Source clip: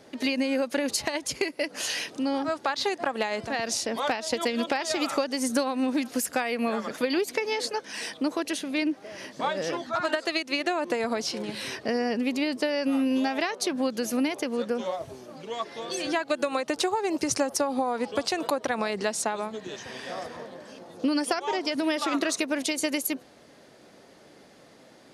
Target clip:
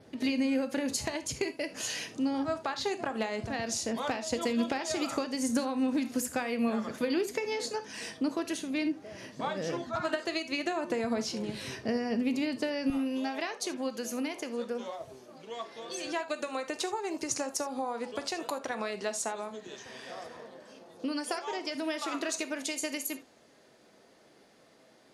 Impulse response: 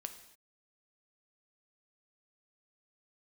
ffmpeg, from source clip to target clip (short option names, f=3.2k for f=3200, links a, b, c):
-filter_complex "[0:a]asetnsamples=n=441:p=0,asendcmd='12.9 equalizer g -3.5',equalizer=f=82:t=o:w=2.8:g=13[a];[1:a]atrim=start_sample=2205,atrim=end_sample=3969[b];[a][b]afir=irnorm=-1:irlink=0,adynamicequalizer=threshold=0.00224:dfrequency=6900:dqfactor=4.3:tfrequency=6900:tqfactor=4.3:attack=5:release=100:ratio=0.375:range=3:mode=boostabove:tftype=bell,volume=-3.5dB"